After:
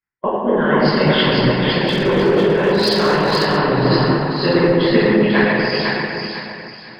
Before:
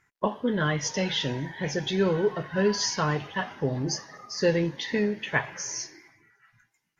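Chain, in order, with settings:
hearing-aid frequency compression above 3,000 Hz 1.5 to 1
on a send: echo with a time of its own for lows and highs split 640 Hz, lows 206 ms, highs 496 ms, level −3 dB
on the sum: rectangular room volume 220 cubic metres, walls hard, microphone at 1.3 metres
in parallel at −1 dB: brickwall limiter −7.5 dBFS, peak gain reduction 7 dB
on the sum: harmonic and percussive parts rebalanced harmonic −10 dB
0:01.88–0:03.58: hard clipping −11.5 dBFS, distortion −21 dB
multiband upward and downward expander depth 70%
level +2 dB

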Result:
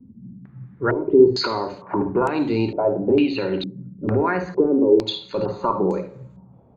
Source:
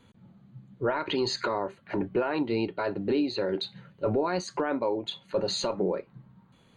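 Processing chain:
far-end echo of a speakerphone 250 ms, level −28 dB
convolution reverb RT60 0.55 s, pre-delay 51 ms, DRR 8.5 dB
low-pass on a step sequencer 2.2 Hz 250–7,700 Hz

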